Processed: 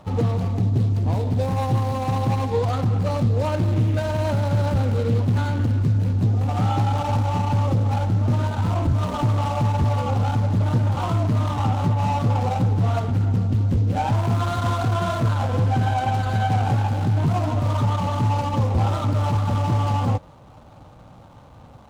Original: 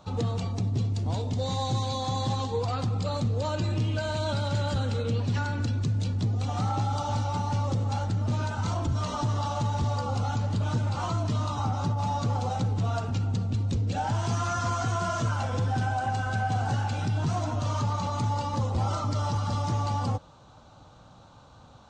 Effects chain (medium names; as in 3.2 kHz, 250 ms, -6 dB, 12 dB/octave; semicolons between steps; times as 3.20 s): median filter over 25 samples; loudspeaker Doppler distortion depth 0.13 ms; trim +7.5 dB